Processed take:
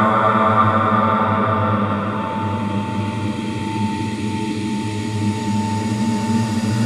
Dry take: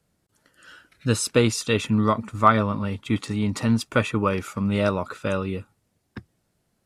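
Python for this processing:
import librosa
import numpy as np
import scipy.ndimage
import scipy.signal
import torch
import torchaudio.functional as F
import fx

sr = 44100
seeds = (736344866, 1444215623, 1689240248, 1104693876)

y = x + 10.0 ** (-32.0 / 20.0) * np.sin(2.0 * np.pi * 890.0 * np.arange(len(x)) / sr)
y = fx.paulstretch(y, sr, seeds[0], factor=5.8, window_s=1.0, from_s=2.46)
y = F.gain(torch.from_numpy(y), 4.0).numpy()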